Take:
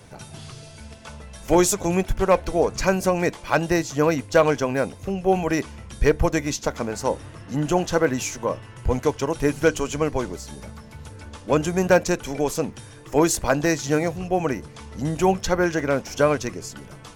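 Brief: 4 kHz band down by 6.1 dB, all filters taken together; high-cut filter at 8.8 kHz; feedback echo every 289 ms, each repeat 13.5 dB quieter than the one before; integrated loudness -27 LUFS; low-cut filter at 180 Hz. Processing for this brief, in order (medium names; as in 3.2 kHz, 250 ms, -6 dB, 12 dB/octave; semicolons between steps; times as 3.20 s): high-pass 180 Hz; low-pass 8.8 kHz; peaking EQ 4 kHz -8.5 dB; feedback delay 289 ms, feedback 21%, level -13.5 dB; trim -3.5 dB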